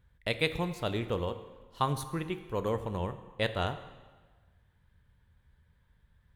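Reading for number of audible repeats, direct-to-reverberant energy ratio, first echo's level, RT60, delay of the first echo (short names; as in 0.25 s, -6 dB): none, 10.0 dB, none, 1.4 s, none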